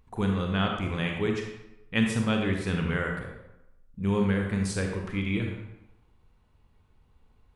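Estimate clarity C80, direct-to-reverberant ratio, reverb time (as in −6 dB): 6.0 dB, 1.5 dB, 0.95 s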